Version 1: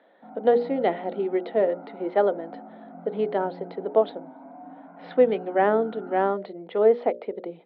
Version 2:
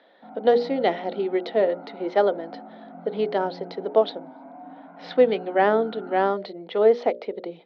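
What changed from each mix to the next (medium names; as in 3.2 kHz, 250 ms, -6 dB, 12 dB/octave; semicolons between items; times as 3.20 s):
master: remove distance through air 400 m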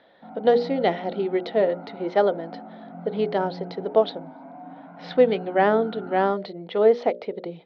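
background: remove distance through air 210 m; master: remove high-pass 210 Hz 24 dB/octave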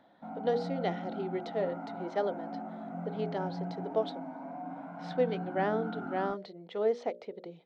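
speech -11.5 dB; master: remove low-pass 4.7 kHz 24 dB/octave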